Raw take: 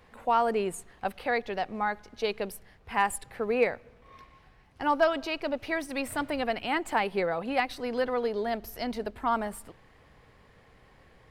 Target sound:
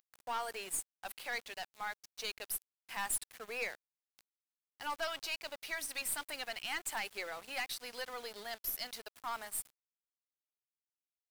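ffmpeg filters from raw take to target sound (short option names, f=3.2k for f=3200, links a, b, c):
-af "aderivative,aeval=exprs='(tanh(70.8*val(0)+0.3)-tanh(0.3))/70.8':c=same,aeval=exprs='val(0)*gte(abs(val(0)),0.00178)':c=same,volume=7dB"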